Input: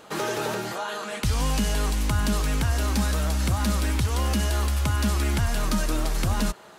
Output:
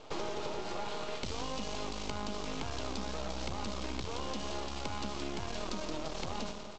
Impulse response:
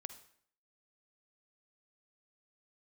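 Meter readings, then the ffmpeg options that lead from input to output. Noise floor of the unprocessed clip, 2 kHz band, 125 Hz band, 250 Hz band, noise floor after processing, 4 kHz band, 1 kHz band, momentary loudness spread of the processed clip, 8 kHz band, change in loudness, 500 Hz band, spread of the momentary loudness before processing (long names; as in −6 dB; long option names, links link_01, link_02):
−47 dBFS, −13.0 dB, −20.5 dB, −12.5 dB, −43 dBFS, −8.5 dB, −8.5 dB, 1 LU, −14.5 dB, −13.5 dB, −7.5 dB, 4 LU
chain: -filter_complex "[0:a]acrossover=split=250 5300:gain=0.178 1 0.141[link_01][link_02][link_03];[link_01][link_02][link_03]amix=inputs=3:normalize=0,aecho=1:1:123|246|369|492|615|738|861:0.224|0.134|0.0806|0.0484|0.029|0.0174|0.0104[link_04];[1:a]atrim=start_sample=2205[link_05];[link_04][link_05]afir=irnorm=-1:irlink=0,aresample=16000,aeval=exprs='max(val(0),0)':channel_layout=same,aresample=44100,equalizer=frequency=1700:width=1.4:gain=-10.5,acompressor=threshold=-39dB:ratio=6,volume=7dB"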